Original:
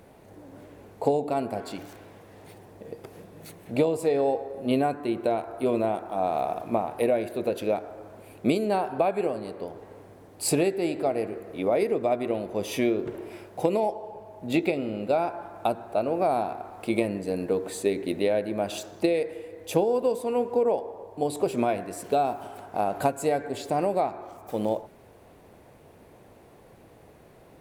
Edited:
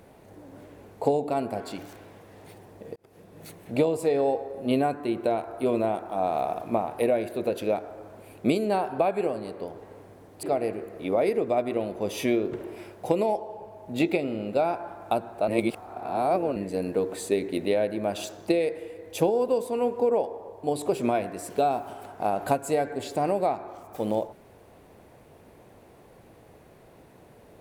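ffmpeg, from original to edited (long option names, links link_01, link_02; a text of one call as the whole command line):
ffmpeg -i in.wav -filter_complex "[0:a]asplit=5[link_01][link_02][link_03][link_04][link_05];[link_01]atrim=end=2.96,asetpts=PTS-STARTPTS,afade=type=out:start_time=2.956:duration=0.004:curve=hsin[link_06];[link_02]atrim=start=2.96:end=10.432,asetpts=PTS-STARTPTS,afade=type=in:duration=0.47[link_07];[link_03]atrim=start=10.968:end=16.022[link_08];[link_04]atrim=start=16.018:end=17.102,asetpts=PTS-STARTPTS,areverse[link_09];[link_05]atrim=start=17.098[link_10];[link_06][link_07]concat=n=2:v=0:a=1[link_11];[link_11][link_08]acrossfade=duration=0.004:curve1=hsin:curve2=hsin[link_12];[link_12][link_09]acrossfade=duration=0.004:curve1=hsin:curve2=hsin[link_13];[link_13][link_10]acrossfade=duration=0.004:curve1=hsin:curve2=hsin" out.wav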